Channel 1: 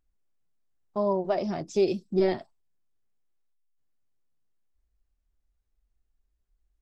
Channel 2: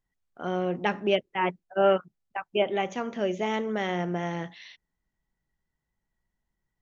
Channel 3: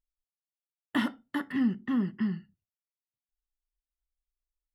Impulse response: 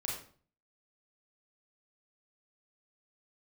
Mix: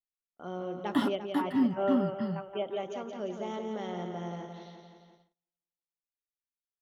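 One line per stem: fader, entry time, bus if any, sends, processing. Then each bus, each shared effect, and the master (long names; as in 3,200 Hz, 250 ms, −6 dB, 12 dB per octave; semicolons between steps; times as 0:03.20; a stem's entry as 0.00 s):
muted
−9.0 dB, 0.00 s, no send, echo send −6 dB, no processing
−0.5 dB, 0.00 s, no send, no echo send, comb filter 7.1 ms, depth 48%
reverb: not used
echo: repeating echo 173 ms, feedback 59%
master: noise gate −60 dBFS, range −30 dB; flat-topped bell 2,100 Hz −8 dB 1 octave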